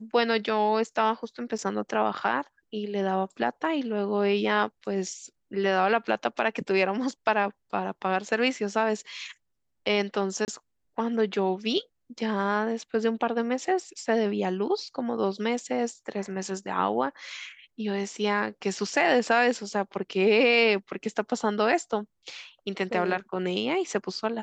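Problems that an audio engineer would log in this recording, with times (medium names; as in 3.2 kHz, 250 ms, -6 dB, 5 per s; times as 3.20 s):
1.58–1.59 s: dropout 5.7 ms
10.45–10.48 s: dropout 29 ms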